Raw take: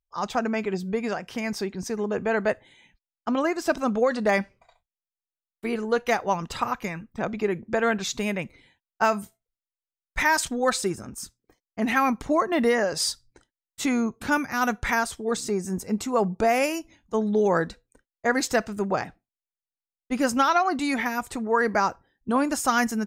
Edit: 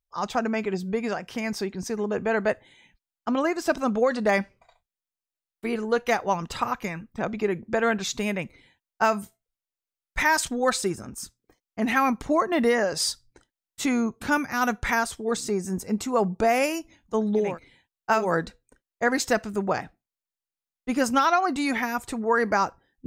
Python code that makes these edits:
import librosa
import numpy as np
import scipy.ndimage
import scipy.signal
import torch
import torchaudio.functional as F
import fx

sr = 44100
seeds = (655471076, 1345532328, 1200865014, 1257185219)

y = fx.edit(x, sr, fx.duplicate(start_s=8.39, length_s=0.77, to_s=17.47, crossfade_s=0.24), tone=tone)